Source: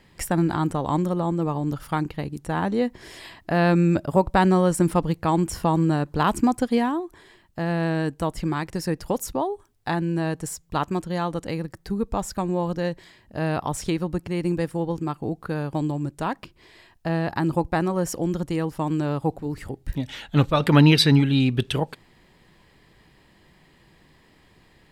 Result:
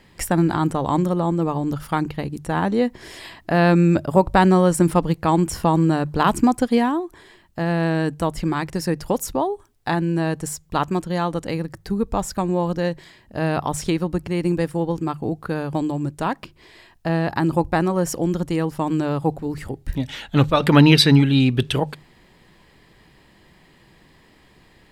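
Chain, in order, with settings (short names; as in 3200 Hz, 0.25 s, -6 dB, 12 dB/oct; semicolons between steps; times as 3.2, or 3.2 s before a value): notches 50/100/150 Hz; gain +3.5 dB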